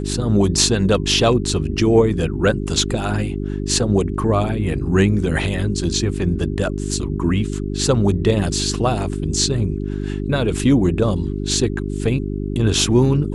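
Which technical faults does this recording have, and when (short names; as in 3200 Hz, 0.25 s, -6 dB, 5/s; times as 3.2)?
hum 50 Hz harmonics 8 -24 dBFS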